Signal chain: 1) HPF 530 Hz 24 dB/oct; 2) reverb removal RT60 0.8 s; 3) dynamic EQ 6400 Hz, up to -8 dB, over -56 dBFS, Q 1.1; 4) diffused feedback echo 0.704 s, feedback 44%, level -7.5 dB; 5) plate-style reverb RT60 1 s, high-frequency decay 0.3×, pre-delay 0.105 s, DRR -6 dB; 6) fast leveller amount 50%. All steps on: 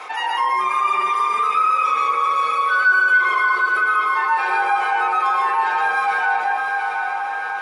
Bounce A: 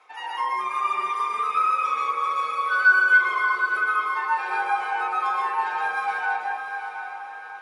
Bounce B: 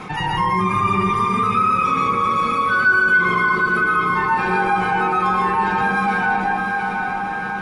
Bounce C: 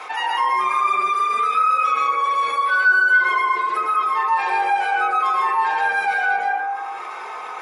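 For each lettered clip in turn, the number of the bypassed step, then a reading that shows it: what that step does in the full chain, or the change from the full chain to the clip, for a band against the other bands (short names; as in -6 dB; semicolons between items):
6, crest factor change +5.0 dB; 1, 500 Hz band +7.5 dB; 4, momentary loudness spread change +2 LU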